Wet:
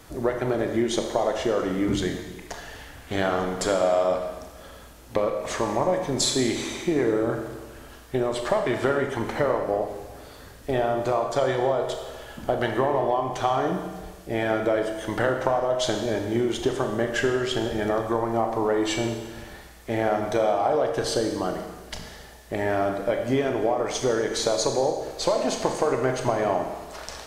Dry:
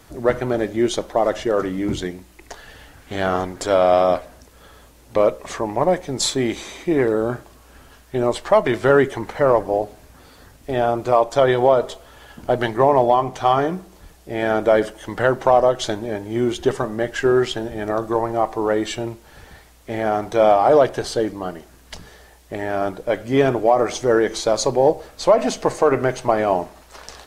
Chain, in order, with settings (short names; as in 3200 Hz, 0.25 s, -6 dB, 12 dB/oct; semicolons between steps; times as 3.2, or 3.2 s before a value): compressor 10:1, threshold -20 dBFS, peak gain reduction 12 dB; Schroeder reverb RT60 1.3 s, combs from 27 ms, DRR 4 dB